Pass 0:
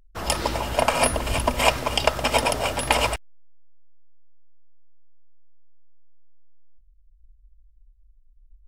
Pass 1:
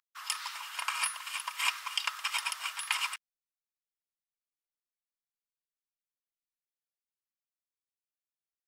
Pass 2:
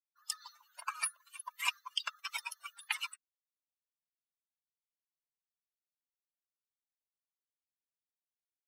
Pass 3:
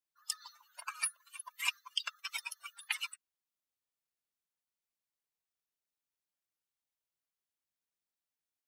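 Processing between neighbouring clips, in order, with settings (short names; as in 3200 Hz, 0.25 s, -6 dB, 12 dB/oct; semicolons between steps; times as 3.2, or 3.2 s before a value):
elliptic high-pass 1100 Hz, stop band 70 dB; gain -7.5 dB
per-bin expansion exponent 3; gain +1 dB
dynamic EQ 940 Hz, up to -7 dB, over -54 dBFS, Q 1.1; gain +1 dB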